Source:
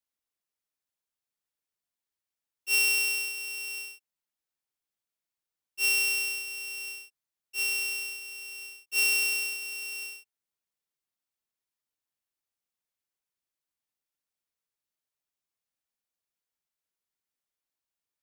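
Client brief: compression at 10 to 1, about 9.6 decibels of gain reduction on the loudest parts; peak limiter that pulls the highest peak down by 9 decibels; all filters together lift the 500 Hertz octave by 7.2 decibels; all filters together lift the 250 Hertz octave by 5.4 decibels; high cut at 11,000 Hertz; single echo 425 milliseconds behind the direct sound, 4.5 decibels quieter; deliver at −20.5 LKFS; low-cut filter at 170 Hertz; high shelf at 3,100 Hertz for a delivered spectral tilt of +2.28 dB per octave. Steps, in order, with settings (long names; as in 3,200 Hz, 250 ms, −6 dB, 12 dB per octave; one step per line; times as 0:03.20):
high-pass filter 170 Hz
low-pass filter 11,000 Hz
parametric band 250 Hz +7 dB
parametric band 500 Hz +6.5 dB
high-shelf EQ 3,100 Hz +6.5 dB
downward compressor 10 to 1, threshold −27 dBFS
brickwall limiter −29.5 dBFS
single-tap delay 425 ms −4.5 dB
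level +14 dB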